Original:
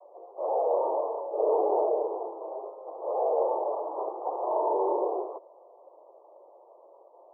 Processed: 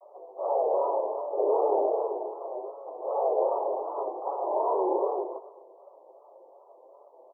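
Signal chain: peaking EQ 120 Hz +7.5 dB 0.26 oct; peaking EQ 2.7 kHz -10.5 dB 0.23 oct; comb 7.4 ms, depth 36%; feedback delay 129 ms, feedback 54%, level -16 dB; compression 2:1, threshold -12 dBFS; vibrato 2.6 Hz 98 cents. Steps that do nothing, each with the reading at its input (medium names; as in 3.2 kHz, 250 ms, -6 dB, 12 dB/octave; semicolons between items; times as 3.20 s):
peaking EQ 120 Hz: input has nothing below 290 Hz; peaking EQ 2.7 kHz: input has nothing above 1.2 kHz; compression, threshold -12 dBFS: peak at its input -14.5 dBFS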